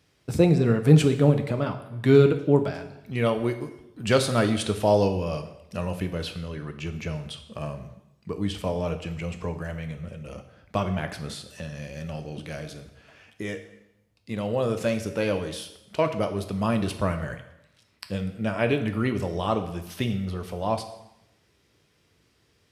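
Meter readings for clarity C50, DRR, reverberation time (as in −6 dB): 11.0 dB, 7.0 dB, 0.85 s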